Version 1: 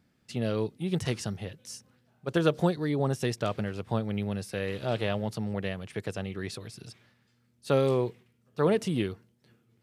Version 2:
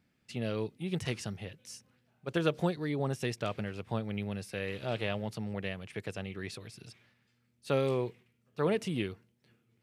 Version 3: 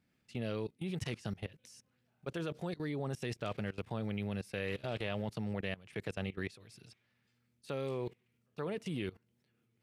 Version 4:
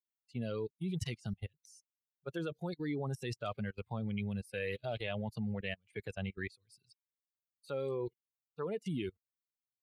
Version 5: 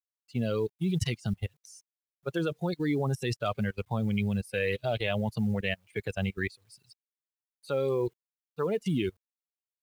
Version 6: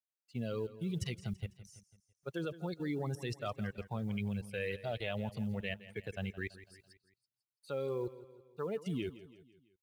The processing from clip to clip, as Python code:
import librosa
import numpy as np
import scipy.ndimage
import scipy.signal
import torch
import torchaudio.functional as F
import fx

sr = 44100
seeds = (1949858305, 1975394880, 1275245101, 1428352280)

y1 = fx.peak_eq(x, sr, hz=2400.0, db=5.5, octaves=0.74)
y1 = F.gain(torch.from_numpy(y1), -5.0).numpy()
y2 = fx.level_steps(y1, sr, step_db=20)
y2 = F.gain(torch.from_numpy(y2), 3.0).numpy()
y3 = fx.bin_expand(y2, sr, power=2.0)
y3 = F.gain(torch.from_numpy(y3), 4.5).numpy()
y4 = fx.quant_companded(y3, sr, bits=8)
y4 = F.gain(torch.from_numpy(y4), 8.5).numpy()
y5 = fx.echo_feedback(y4, sr, ms=166, feedback_pct=50, wet_db=-16.0)
y5 = F.gain(torch.from_numpy(y5), -8.5).numpy()